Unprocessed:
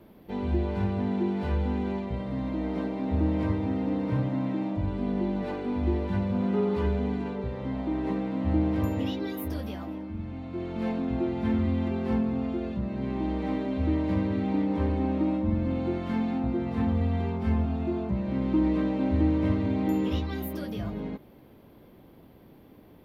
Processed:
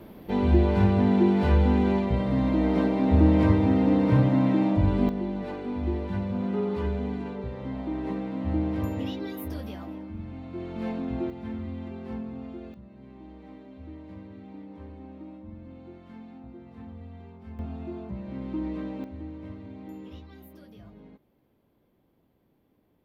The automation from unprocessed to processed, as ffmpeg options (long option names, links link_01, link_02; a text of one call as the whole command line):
ffmpeg -i in.wav -af "asetnsamples=nb_out_samples=441:pad=0,asendcmd='5.09 volume volume -2dB;11.3 volume volume -9dB;12.74 volume volume -17dB;17.59 volume volume -7.5dB;19.04 volume volume -15.5dB',volume=7dB" out.wav